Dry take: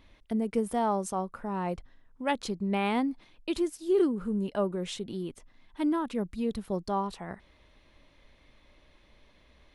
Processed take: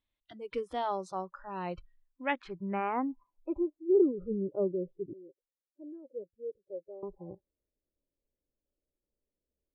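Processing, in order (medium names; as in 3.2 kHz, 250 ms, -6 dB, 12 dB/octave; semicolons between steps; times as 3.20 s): low-pass sweep 3.7 kHz -> 450 Hz, 1.72–4.15 s; spectral noise reduction 26 dB; 5.13–7.03 s: vowel filter e; trim -4.5 dB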